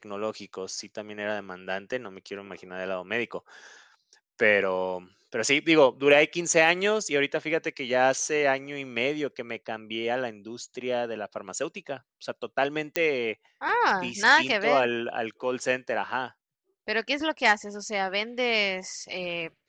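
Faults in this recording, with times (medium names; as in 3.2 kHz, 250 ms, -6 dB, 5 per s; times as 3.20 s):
12.96 s: pop -10 dBFS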